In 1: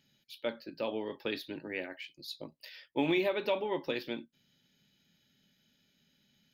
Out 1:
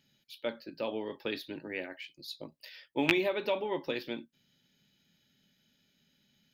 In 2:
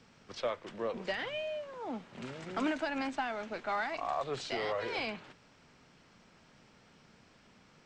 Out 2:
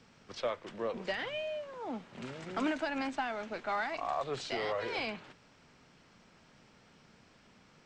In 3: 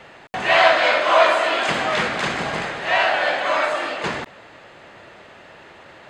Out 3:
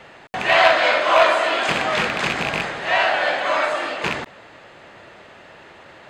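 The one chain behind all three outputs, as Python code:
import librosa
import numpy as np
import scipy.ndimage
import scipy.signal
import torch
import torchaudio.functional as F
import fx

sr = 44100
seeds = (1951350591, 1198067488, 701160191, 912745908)

y = fx.rattle_buzz(x, sr, strikes_db=-31.0, level_db=-9.0)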